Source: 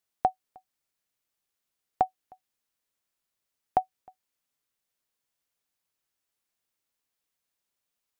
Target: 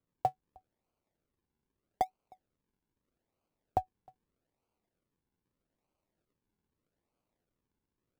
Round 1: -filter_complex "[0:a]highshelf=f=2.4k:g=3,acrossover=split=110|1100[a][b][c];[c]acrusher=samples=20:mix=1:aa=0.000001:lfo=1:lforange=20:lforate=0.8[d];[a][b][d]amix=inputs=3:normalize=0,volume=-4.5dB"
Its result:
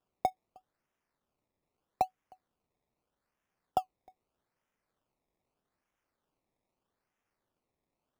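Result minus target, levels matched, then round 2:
decimation with a swept rate: distortion -19 dB
-filter_complex "[0:a]highshelf=f=2.4k:g=3,acrossover=split=110|1100[a][b][c];[c]acrusher=samples=48:mix=1:aa=0.000001:lfo=1:lforange=48:lforate=0.8[d];[a][b][d]amix=inputs=3:normalize=0,volume=-4.5dB"

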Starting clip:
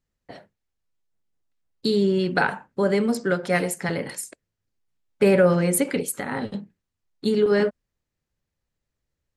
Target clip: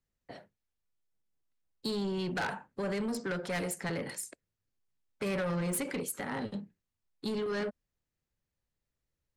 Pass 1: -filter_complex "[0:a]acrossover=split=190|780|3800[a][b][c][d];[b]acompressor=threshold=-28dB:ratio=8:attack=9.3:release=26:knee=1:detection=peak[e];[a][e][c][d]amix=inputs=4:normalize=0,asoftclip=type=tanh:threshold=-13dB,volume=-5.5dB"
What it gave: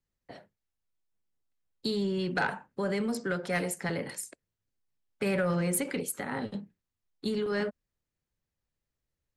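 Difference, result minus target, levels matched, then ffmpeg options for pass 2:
soft clip: distortion -12 dB
-filter_complex "[0:a]acrossover=split=190|780|3800[a][b][c][d];[b]acompressor=threshold=-28dB:ratio=8:attack=9.3:release=26:knee=1:detection=peak[e];[a][e][c][d]amix=inputs=4:normalize=0,asoftclip=type=tanh:threshold=-23.5dB,volume=-5.5dB"

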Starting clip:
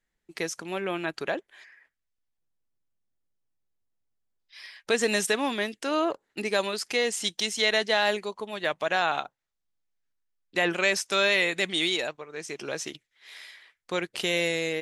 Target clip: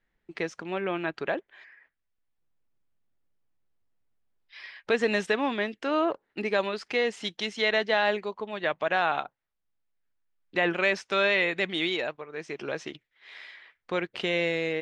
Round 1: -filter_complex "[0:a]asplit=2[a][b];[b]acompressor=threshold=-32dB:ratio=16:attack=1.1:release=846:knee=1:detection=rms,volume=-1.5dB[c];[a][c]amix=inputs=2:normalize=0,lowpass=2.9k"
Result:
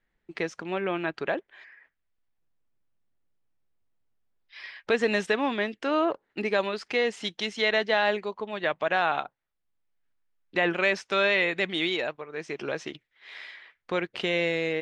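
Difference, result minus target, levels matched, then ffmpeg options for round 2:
compressor: peak gain reduction -9 dB
-filter_complex "[0:a]asplit=2[a][b];[b]acompressor=threshold=-41.5dB:ratio=16:attack=1.1:release=846:knee=1:detection=rms,volume=-1.5dB[c];[a][c]amix=inputs=2:normalize=0,lowpass=2.9k"

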